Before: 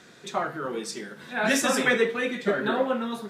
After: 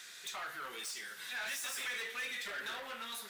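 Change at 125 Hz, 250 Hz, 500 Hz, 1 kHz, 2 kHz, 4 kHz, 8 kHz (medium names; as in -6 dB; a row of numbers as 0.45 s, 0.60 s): under -25 dB, -30.5 dB, -25.5 dB, -15.5 dB, -11.5 dB, -7.0 dB, -9.0 dB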